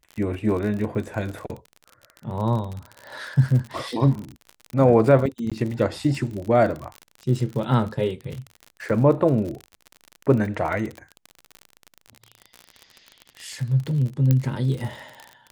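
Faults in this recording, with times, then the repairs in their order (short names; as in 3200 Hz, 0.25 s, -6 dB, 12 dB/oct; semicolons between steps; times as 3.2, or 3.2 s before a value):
crackle 41/s -29 dBFS
5.5–5.52 gap 16 ms
14.31 pop -8 dBFS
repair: de-click; interpolate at 5.5, 16 ms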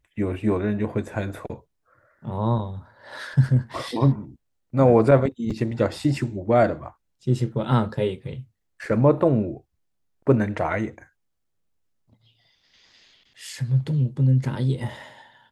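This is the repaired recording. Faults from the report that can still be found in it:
none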